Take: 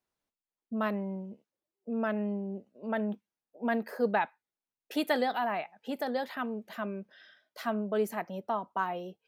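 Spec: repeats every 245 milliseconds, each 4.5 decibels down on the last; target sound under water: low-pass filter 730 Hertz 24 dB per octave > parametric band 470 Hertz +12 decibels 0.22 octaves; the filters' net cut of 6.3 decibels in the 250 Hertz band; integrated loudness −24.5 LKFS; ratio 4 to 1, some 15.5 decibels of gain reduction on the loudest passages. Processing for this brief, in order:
parametric band 250 Hz −8 dB
downward compressor 4 to 1, threshold −44 dBFS
low-pass filter 730 Hz 24 dB per octave
parametric band 470 Hz +12 dB 0.22 octaves
repeating echo 245 ms, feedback 60%, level −4.5 dB
level +19.5 dB

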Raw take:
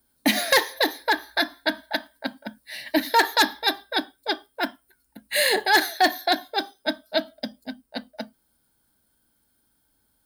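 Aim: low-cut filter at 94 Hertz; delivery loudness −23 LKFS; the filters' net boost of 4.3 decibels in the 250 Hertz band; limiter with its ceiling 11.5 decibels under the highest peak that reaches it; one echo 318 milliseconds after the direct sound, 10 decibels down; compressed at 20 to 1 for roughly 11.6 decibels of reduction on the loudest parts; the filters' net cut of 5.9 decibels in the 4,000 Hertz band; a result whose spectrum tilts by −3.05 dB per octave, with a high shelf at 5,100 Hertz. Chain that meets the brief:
high-pass filter 94 Hz
parametric band 250 Hz +5.5 dB
parametric band 4,000 Hz −4 dB
high-shelf EQ 5,100 Hz −6.5 dB
downward compressor 20 to 1, threshold −24 dBFS
brickwall limiter −24.5 dBFS
single-tap delay 318 ms −10 dB
level +13 dB

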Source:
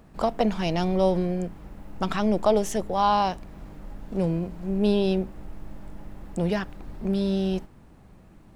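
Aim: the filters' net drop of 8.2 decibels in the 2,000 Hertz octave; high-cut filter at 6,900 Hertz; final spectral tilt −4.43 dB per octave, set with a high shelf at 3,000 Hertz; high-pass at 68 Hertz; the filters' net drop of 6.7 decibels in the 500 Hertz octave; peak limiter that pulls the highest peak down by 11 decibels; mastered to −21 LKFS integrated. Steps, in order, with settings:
high-pass filter 68 Hz
low-pass filter 6,900 Hz
parametric band 500 Hz −8.5 dB
parametric band 2,000 Hz −8.5 dB
high-shelf EQ 3,000 Hz −6.5 dB
level +14 dB
brickwall limiter −11.5 dBFS

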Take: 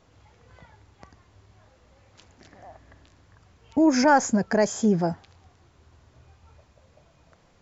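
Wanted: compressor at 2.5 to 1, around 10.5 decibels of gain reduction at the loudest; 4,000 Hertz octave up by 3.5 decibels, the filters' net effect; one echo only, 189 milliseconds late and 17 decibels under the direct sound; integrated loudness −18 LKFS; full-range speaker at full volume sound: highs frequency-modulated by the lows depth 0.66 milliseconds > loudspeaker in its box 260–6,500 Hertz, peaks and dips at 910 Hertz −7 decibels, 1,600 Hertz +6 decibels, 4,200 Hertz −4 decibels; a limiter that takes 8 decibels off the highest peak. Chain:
parametric band 4,000 Hz +7.5 dB
downward compressor 2.5 to 1, threshold −30 dBFS
brickwall limiter −25 dBFS
single-tap delay 189 ms −17 dB
highs frequency-modulated by the lows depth 0.66 ms
loudspeaker in its box 260–6,500 Hz, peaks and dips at 910 Hz −7 dB, 1,600 Hz +6 dB, 4,200 Hz −4 dB
level +20.5 dB

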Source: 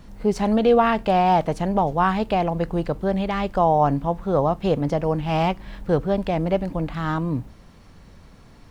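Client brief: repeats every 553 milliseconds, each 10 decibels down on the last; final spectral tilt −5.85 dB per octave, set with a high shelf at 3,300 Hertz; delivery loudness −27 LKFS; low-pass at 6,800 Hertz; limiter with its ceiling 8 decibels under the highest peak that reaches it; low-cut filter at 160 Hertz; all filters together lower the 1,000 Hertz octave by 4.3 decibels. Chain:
high-pass filter 160 Hz
low-pass filter 6,800 Hz
parametric band 1,000 Hz −6.5 dB
high-shelf EQ 3,300 Hz +3 dB
brickwall limiter −16.5 dBFS
repeating echo 553 ms, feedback 32%, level −10 dB

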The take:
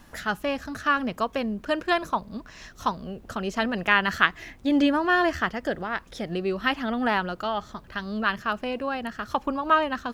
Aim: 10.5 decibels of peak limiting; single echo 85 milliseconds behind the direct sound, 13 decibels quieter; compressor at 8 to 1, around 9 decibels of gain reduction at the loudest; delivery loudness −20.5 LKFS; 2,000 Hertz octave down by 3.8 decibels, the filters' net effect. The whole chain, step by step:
parametric band 2,000 Hz −5 dB
downward compressor 8 to 1, threshold −26 dBFS
brickwall limiter −23.5 dBFS
single-tap delay 85 ms −13 dB
level +13.5 dB

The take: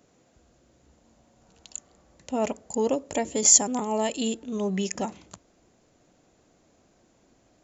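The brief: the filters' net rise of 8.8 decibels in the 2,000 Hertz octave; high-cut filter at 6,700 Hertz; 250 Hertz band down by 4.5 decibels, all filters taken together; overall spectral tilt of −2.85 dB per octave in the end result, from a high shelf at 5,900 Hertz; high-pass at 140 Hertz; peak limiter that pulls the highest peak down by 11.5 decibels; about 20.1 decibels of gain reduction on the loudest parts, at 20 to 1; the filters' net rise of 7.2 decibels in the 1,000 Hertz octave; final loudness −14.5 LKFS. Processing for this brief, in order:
high-pass filter 140 Hz
low-pass filter 6,700 Hz
parametric band 250 Hz −5 dB
parametric band 1,000 Hz +8 dB
parametric band 2,000 Hz +7.5 dB
high-shelf EQ 5,900 Hz +8 dB
downward compressor 20 to 1, threshold −30 dBFS
level +24.5 dB
brickwall limiter −2.5 dBFS

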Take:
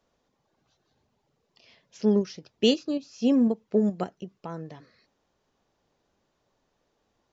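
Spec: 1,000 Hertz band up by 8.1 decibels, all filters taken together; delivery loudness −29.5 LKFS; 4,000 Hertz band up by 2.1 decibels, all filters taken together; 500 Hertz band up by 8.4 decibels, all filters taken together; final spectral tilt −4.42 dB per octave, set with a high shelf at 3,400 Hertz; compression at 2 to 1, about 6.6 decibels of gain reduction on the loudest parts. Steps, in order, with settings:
parametric band 500 Hz +8.5 dB
parametric band 1,000 Hz +7.5 dB
high-shelf EQ 3,400 Hz −4 dB
parametric band 4,000 Hz +5 dB
downward compressor 2 to 1, threshold −22 dBFS
level −3 dB

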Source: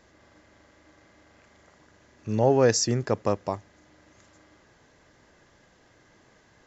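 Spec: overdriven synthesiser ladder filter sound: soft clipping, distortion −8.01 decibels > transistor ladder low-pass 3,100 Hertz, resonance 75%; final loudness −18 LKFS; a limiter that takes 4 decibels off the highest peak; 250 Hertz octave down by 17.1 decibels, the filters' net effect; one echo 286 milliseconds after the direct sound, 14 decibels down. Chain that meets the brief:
parametric band 250 Hz −6.5 dB
brickwall limiter −14.5 dBFS
single-tap delay 286 ms −14 dB
soft clipping −26.5 dBFS
transistor ladder low-pass 3,100 Hz, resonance 75%
level +27.5 dB

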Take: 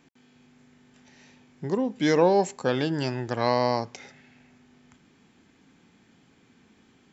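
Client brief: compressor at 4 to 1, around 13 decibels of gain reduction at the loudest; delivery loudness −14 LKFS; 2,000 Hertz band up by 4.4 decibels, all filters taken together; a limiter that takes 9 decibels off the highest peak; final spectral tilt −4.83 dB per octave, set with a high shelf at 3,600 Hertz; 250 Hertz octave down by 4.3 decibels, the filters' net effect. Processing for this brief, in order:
parametric band 250 Hz −6 dB
parametric band 2,000 Hz +4.5 dB
high-shelf EQ 3,600 Hz +3.5 dB
downward compressor 4 to 1, threshold −32 dBFS
level +25.5 dB
brickwall limiter −1.5 dBFS

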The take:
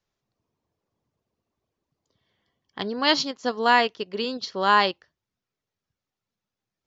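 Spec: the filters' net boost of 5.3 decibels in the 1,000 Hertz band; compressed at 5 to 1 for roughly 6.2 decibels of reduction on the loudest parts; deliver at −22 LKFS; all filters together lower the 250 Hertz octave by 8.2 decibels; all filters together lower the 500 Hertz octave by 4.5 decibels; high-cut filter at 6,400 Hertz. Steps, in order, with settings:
low-pass filter 6,400 Hz
parametric band 250 Hz −8.5 dB
parametric band 500 Hz −6.5 dB
parametric band 1,000 Hz +8 dB
downward compressor 5 to 1, threshold −15 dBFS
level +2 dB

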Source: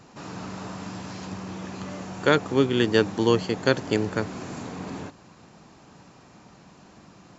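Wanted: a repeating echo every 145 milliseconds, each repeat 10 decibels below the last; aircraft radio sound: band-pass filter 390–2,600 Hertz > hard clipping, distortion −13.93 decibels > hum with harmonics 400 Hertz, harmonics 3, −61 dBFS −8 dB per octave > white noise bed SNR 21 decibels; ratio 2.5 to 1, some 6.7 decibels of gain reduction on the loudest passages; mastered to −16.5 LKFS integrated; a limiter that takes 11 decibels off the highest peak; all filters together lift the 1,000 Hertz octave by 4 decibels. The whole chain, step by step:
parametric band 1,000 Hz +5.5 dB
downward compressor 2.5 to 1, threshold −23 dBFS
brickwall limiter −19.5 dBFS
band-pass filter 390–2,600 Hz
repeating echo 145 ms, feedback 32%, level −10 dB
hard clipping −29.5 dBFS
hum with harmonics 400 Hz, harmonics 3, −61 dBFS −8 dB per octave
white noise bed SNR 21 dB
level +20.5 dB

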